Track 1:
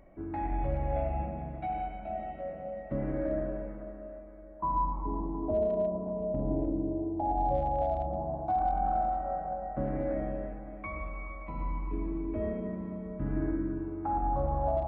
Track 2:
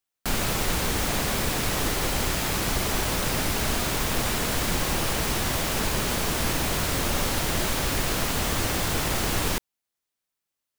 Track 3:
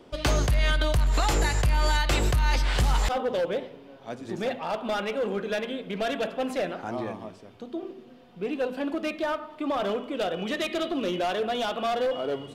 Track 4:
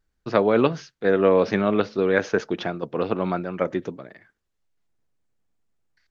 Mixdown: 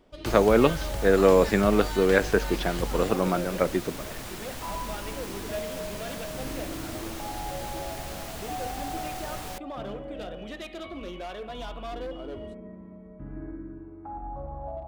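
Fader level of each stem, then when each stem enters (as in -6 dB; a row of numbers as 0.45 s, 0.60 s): -7.5 dB, -13.0 dB, -10.5 dB, -0.5 dB; 0.00 s, 0.00 s, 0.00 s, 0.00 s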